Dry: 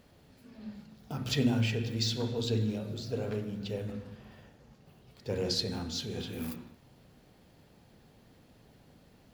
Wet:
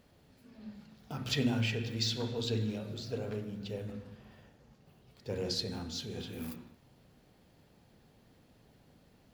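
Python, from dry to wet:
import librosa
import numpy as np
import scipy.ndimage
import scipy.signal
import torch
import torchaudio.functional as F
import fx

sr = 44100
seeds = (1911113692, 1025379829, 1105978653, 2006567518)

y = fx.peak_eq(x, sr, hz=2200.0, db=4.0, octaves=2.9, at=(0.81, 3.18))
y = y * 10.0 ** (-3.5 / 20.0)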